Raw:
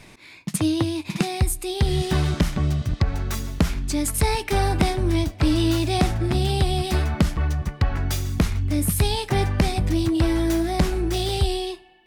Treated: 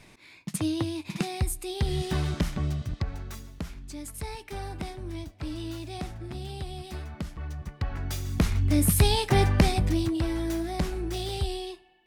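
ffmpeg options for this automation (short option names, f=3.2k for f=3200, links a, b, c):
-af "volume=9dB,afade=t=out:st=2.64:d=0.87:silence=0.354813,afade=t=in:st=7.29:d=0.94:silence=0.375837,afade=t=in:st=8.23:d=0.45:silence=0.446684,afade=t=out:st=9.56:d=0.66:silence=0.398107"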